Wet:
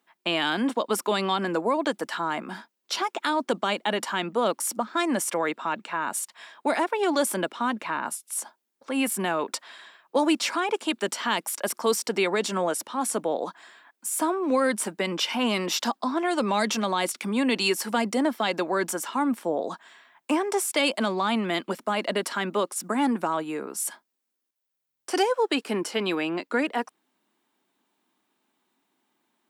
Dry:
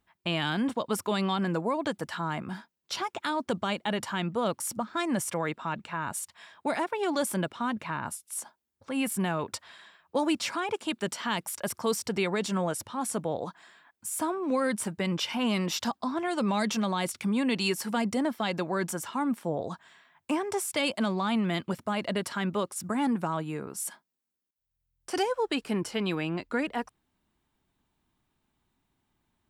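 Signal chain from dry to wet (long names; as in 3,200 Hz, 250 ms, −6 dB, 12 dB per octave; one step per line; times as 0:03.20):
high-pass filter 240 Hz 24 dB per octave
level +5 dB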